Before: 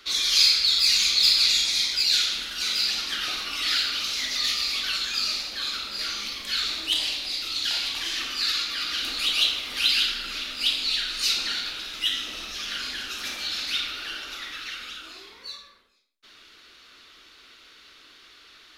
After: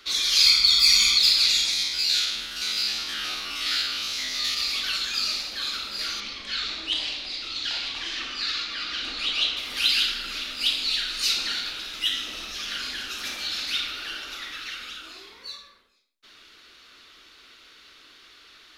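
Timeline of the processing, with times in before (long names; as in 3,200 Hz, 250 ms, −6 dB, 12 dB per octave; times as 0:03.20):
0:00.46–0:01.18: comb filter 0.9 ms, depth 93%
0:01.73–0:04.57: spectrum averaged block by block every 50 ms
0:06.20–0:09.57: high-frequency loss of the air 98 metres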